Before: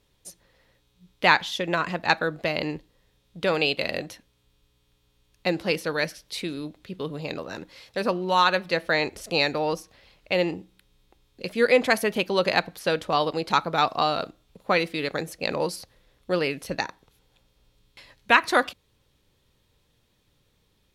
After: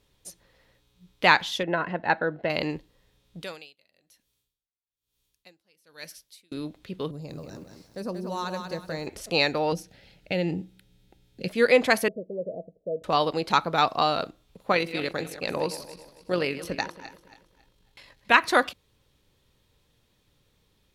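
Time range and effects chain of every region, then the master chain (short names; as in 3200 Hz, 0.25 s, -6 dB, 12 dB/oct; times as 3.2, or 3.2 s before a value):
1.63–2.5 LPF 2000 Hz + notch comb 1200 Hz
3.42–6.52 pre-emphasis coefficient 0.8 + dB-linear tremolo 1.1 Hz, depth 31 dB
7.11–9.07 EQ curve 110 Hz 0 dB, 3200 Hz -20 dB, 5500 Hz -4 dB + lo-fi delay 0.183 s, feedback 35%, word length 10-bit, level -6 dB
9.72–11.48 bell 160 Hz +10 dB 1.3 oct + compressor 2:1, threshold -26 dBFS + Butterworth band-stop 1100 Hz, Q 3
12.08–13.04 rippled Chebyshev low-pass 670 Hz, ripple 6 dB + low shelf 360 Hz -11 dB
14.72–18.34 regenerating reverse delay 0.138 s, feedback 55%, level -13 dB + AM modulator 47 Hz, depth 25%
whole clip: dry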